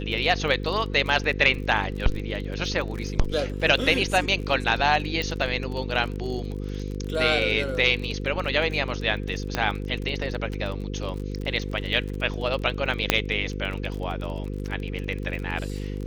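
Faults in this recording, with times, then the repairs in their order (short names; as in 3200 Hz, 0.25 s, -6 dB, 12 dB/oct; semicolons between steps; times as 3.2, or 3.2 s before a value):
buzz 50 Hz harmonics 10 -31 dBFS
crackle 29/s -31 dBFS
5.22 pop -15 dBFS
9.55 pop -10 dBFS
13.1 pop -1 dBFS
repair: de-click; de-hum 50 Hz, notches 10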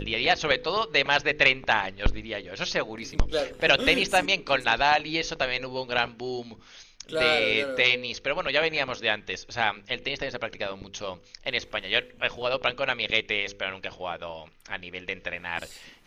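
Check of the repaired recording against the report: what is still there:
none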